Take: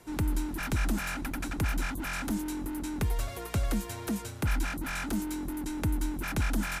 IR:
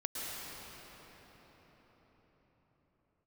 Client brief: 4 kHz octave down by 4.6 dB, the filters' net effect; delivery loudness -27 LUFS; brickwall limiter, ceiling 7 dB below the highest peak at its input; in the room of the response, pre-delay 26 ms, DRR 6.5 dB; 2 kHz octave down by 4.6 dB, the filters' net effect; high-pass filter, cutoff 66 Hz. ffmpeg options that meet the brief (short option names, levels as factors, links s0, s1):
-filter_complex "[0:a]highpass=66,equalizer=f=2000:t=o:g=-5,equalizer=f=4000:t=o:g=-4.5,alimiter=level_in=1.33:limit=0.0631:level=0:latency=1,volume=0.75,asplit=2[s0][s1];[1:a]atrim=start_sample=2205,adelay=26[s2];[s1][s2]afir=irnorm=-1:irlink=0,volume=0.316[s3];[s0][s3]amix=inputs=2:normalize=0,volume=2.51"